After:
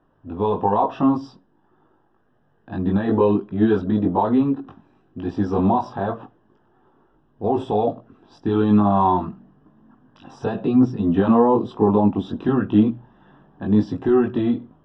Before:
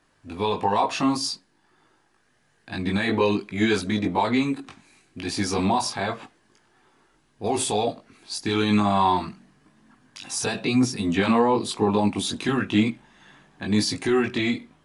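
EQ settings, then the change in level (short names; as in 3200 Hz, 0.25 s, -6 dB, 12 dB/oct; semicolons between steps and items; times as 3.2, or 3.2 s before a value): running mean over 20 samples; air absorption 160 m; notches 60/120 Hz; +5.5 dB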